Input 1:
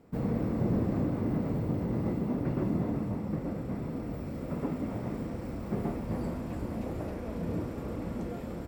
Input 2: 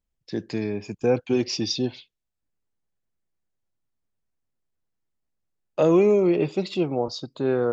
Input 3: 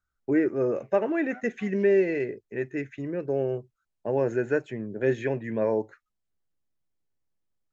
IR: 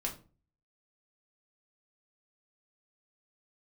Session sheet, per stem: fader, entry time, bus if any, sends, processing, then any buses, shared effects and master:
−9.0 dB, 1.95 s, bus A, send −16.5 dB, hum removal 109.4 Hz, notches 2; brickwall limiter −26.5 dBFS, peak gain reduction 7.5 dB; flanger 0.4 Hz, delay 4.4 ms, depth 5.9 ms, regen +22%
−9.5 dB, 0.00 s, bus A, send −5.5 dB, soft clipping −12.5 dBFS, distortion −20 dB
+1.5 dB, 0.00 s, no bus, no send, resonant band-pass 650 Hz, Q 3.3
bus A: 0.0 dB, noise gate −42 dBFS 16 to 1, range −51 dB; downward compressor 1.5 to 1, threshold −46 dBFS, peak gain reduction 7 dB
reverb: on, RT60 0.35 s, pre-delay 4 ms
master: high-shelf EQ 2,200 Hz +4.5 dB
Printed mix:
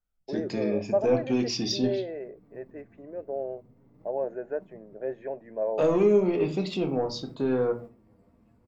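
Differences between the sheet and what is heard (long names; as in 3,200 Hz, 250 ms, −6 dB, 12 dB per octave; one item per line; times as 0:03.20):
stem 2 −9.5 dB → −2.0 dB
master: missing high-shelf EQ 2,200 Hz +4.5 dB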